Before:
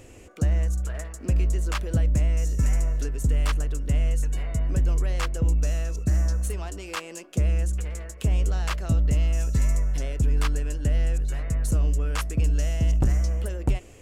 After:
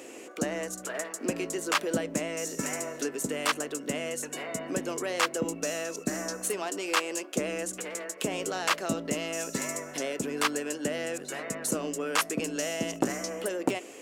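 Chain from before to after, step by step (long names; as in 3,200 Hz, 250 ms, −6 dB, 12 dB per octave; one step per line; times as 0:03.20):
high-pass filter 250 Hz 24 dB per octave
level +6 dB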